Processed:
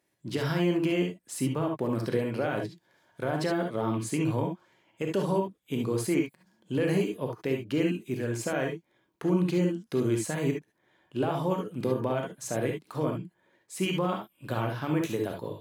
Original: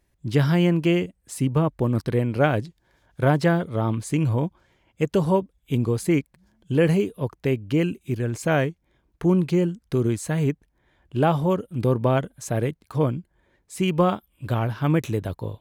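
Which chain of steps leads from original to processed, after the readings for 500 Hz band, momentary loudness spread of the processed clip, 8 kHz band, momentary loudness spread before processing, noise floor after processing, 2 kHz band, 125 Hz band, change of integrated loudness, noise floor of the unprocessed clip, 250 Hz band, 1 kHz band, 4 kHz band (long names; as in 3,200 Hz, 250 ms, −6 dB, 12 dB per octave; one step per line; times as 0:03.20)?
−5.5 dB, 8 LU, −1.5 dB, 8 LU, −73 dBFS, −5.5 dB, −9.5 dB, −6.5 dB, −70 dBFS, −5.5 dB, −6.5 dB, −3.0 dB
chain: high-pass filter 220 Hz 12 dB per octave
brickwall limiter −16 dBFS, peak gain reduction 11.5 dB
reverb whose tail is shaped and stops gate 90 ms rising, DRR 2 dB
level −3 dB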